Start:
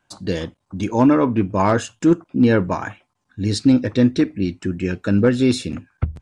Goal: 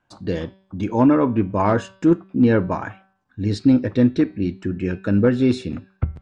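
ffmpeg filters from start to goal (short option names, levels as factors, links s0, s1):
-af "aemphasis=mode=reproduction:type=75fm,bandreject=f=191.8:t=h:w=4,bandreject=f=383.6:t=h:w=4,bandreject=f=575.4:t=h:w=4,bandreject=f=767.2:t=h:w=4,bandreject=f=959:t=h:w=4,bandreject=f=1150.8:t=h:w=4,bandreject=f=1342.6:t=h:w=4,bandreject=f=1534.4:t=h:w=4,bandreject=f=1726.2:t=h:w=4,bandreject=f=1918:t=h:w=4,bandreject=f=2109.8:t=h:w=4,bandreject=f=2301.6:t=h:w=4,bandreject=f=2493.4:t=h:w=4,bandreject=f=2685.2:t=h:w=4,bandreject=f=2877:t=h:w=4,bandreject=f=3068.8:t=h:w=4,bandreject=f=3260.6:t=h:w=4,bandreject=f=3452.4:t=h:w=4,bandreject=f=3644.2:t=h:w=4,bandreject=f=3836:t=h:w=4,bandreject=f=4027.8:t=h:w=4,bandreject=f=4219.6:t=h:w=4,bandreject=f=4411.4:t=h:w=4,bandreject=f=4603.2:t=h:w=4,bandreject=f=4795:t=h:w=4,bandreject=f=4986.8:t=h:w=4,bandreject=f=5178.6:t=h:w=4,volume=0.841"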